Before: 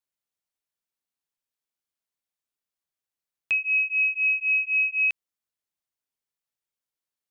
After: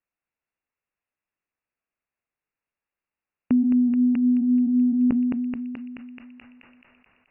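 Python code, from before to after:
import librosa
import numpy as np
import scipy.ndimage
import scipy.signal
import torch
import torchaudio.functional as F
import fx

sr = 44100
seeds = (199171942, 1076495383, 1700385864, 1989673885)

p1 = x + fx.echo_filtered(x, sr, ms=215, feedback_pct=77, hz=1600.0, wet_db=-5.5, dry=0)
p2 = fx.freq_invert(p1, sr, carrier_hz=2800)
p3 = fx.sustainer(p2, sr, db_per_s=22.0)
y = F.gain(torch.from_numpy(p3), 4.5).numpy()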